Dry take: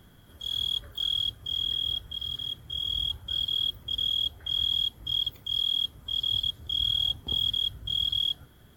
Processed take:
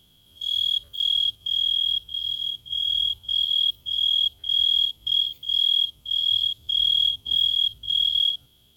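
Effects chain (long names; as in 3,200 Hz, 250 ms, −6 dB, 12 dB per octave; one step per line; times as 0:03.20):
spectrum averaged block by block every 50 ms
high shelf with overshoot 2,300 Hz +9 dB, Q 3
level −7 dB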